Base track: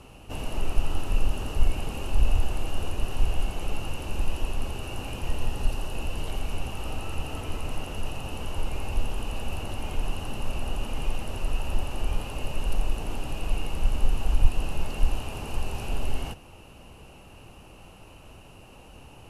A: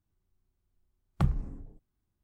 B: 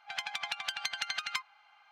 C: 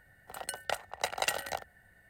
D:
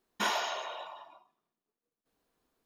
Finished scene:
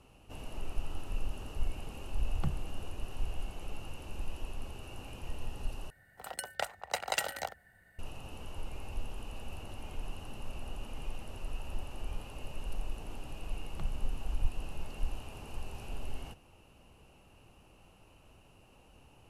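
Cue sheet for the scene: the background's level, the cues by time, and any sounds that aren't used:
base track -11.5 dB
1.23 s: add A -8.5 dB
5.90 s: replace with C -1.5 dB
12.59 s: add A -10 dB + compression, threshold -30 dBFS
not used: B, D

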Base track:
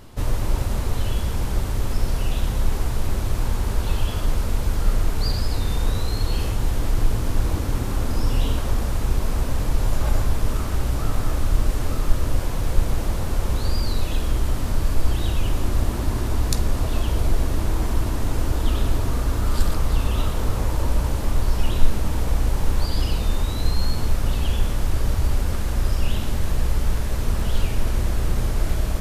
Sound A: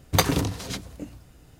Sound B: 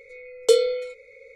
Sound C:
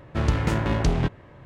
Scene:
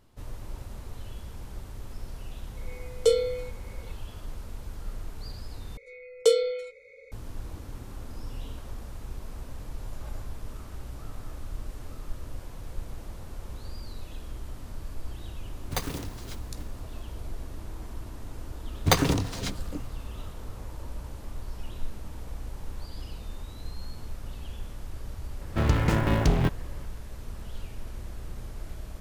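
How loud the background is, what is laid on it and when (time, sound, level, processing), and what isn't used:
base track -17 dB
2.57 s: add B -6 dB + bass shelf 320 Hz +5 dB
5.77 s: replace with B -3.5 dB
15.58 s: add A -12 dB + block-companded coder 3-bit
18.73 s: add A -0.5 dB + median filter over 3 samples
25.41 s: add C -0.5 dB + dead-time distortion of 0.053 ms

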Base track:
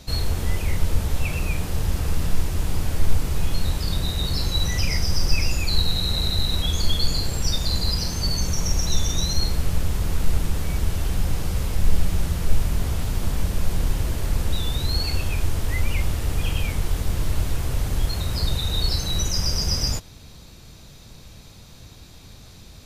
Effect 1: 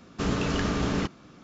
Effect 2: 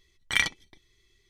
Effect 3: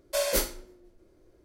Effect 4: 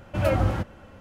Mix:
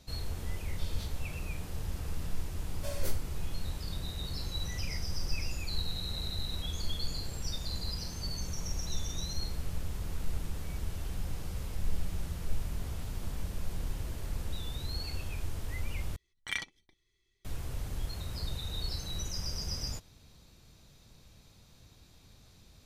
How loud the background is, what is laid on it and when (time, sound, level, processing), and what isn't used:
base track -13.5 dB
0.65 s: add 3 -10 dB + band-pass filter 3.7 kHz, Q 3.5
2.70 s: add 3 -14.5 dB
16.16 s: replace with 2 -11 dB
not used: 1, 4

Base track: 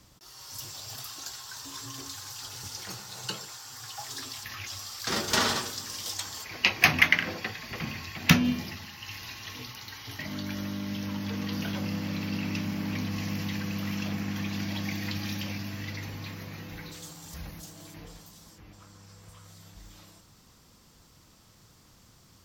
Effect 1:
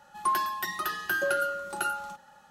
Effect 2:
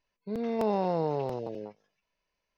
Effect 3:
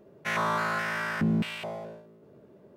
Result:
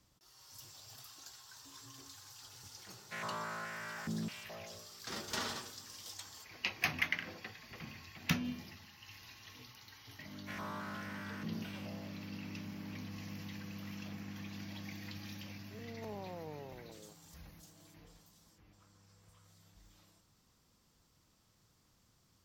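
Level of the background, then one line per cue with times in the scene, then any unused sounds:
base track -13.5 dB
2.86 s: add 3 -13.5 dB
10.22 s: add 3 -17 dB
15.43 s: add 2 -18 dB
not used: 1

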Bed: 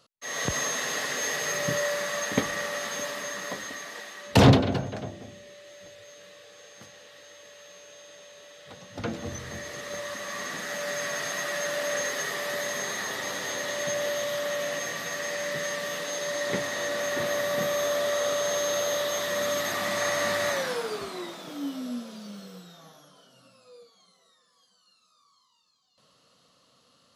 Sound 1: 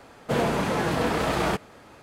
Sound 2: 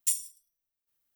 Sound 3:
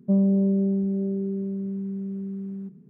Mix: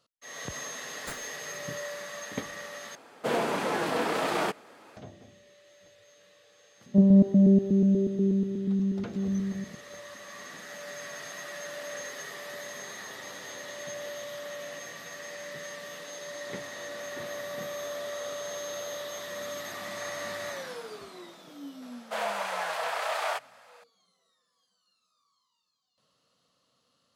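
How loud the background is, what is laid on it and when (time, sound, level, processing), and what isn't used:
bed -9.5 dB
1.00 s: add 2 -0.5 dB + median filter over 15 samples
2.95 s: replace with 1 -2.5 dB + high-pass 270 Hz
6.86 s: add 3 -0.5 dB + chunks repeated in reverse 121 ms, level -0.5 dB
21.82 s: add 1 -3 dB + Chebyshev high-pass 600 Hz, order 4

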